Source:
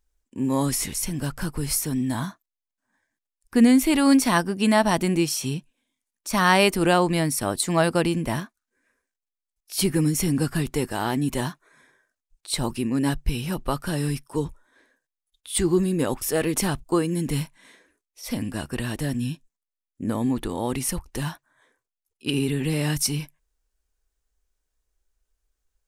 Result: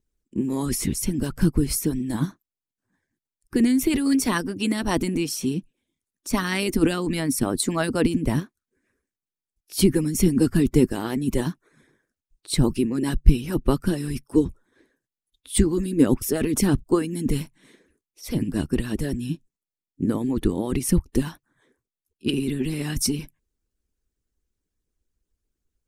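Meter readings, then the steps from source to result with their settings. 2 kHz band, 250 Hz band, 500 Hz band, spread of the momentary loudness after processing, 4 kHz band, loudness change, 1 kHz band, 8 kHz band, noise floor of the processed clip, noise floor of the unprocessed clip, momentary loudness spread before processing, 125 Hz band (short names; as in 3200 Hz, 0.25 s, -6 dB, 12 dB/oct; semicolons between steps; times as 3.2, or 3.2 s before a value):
-4.5 dB, +1.5 dB, -0.5 dB, 9 LU, -2.5 dB, 0.0 dB, -7.5 dB, -1.5 dB, under -85 dBFS, under -85 dBFS, 13 LU, +1.0 dB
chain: resonant low shelf 470 Hz +11 dB, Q 1.5; harmonic-percussive split harmonic -17 dB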